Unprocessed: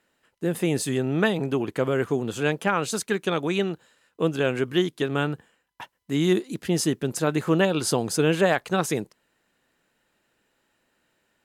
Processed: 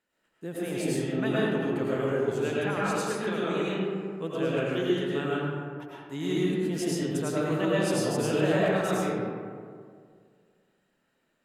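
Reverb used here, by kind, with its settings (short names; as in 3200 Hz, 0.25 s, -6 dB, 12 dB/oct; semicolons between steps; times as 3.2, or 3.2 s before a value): digital reverb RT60 2.1 s, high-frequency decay 0.4×, pre-delay 65 ms, DRR -7.5 dB; gain -12 dB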